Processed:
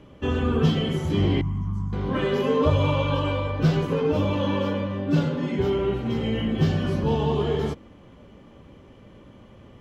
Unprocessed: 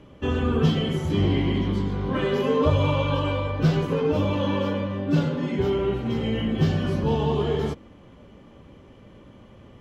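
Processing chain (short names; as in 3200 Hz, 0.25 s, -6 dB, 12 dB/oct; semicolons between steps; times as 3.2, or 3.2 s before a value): 1.41–1.93 EQ curve 150 Hz 0 dB, 480 Hz -30 dB, 1100 Hz -3 dB, 1700 Hz -19 dB, 4100 Hz -27 dB, 6000 Hz -8 dB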